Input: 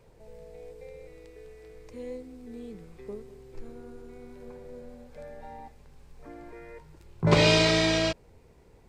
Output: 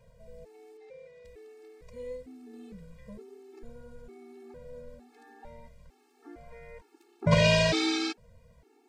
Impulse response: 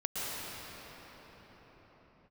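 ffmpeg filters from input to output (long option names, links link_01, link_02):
-filter_complex "[0:a]asettb=1/sr,asplit=3[link_01][link_02][link_03];[link_01]atrim=end=0.774[link_04];[link_02]atrim=start=0.77:end=1.25,asetpts=PTS-STARTPTS,afade=type=in:duration=0.004:curve=qsin,afade=type=out:start_time=0.476:duration=0.004:curve=qsin,highpass=240,lowpass=5500[link_05];[link_03]atrim=start=1.246[link_06];[link_04][link_05]acrossfade=duration=0.004:curve1=hsin:curve2=qsin[link_07];[link_07][link_06]acrossfade=duration=0.004:curve1=qsin:curve2=hsin,afftfilt=real='re*gt(sin(2*PI*1.1*pts/sr)*(1-2*mod(floor(b*sr/1024/230),2)),0)':imag='im*gt(sin(2*PI*1.1*pts/sr)*(1-2*mod(floor(b*sr/1024/230),2)),0)':win_size=1024:overlap=0.75"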